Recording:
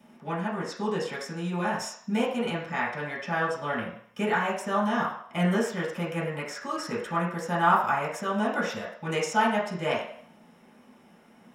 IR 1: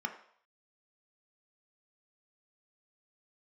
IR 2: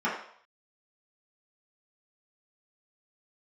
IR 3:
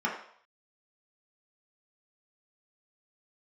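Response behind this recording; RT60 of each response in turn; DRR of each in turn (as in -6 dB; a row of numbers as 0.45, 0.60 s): 2; 0.60, 0.60, 0.60 s; 4.0, -8.5, -4.0 dB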